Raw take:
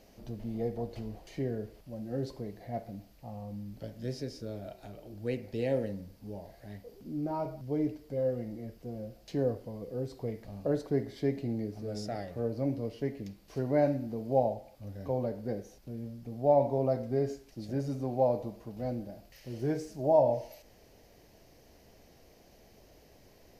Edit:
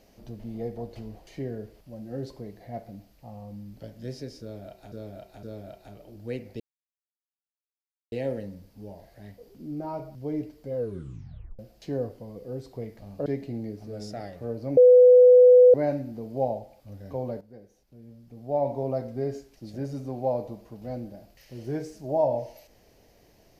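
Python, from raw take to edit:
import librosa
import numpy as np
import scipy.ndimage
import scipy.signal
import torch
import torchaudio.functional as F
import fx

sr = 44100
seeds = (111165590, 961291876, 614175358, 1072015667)

y = fx.edit(x, sr, fx.repeat(start_s=4.41, length_s=0.51, count=3),
    fx.insert_silence(at_s=5.58, length_s=1.52),
    fx.tape_stop(start_s=8.22, length_s=0.83),
    fx.cut(start_s=10.72, length_s=0.49),
    fx.bleep(start_s=12.72, length_s=0.97, hz=498.0, db=-10.0),
    fx.fade_in_from(start_s=15.36, length_s=1.35, curve='qua', floor_db=-13.5), tone=tone)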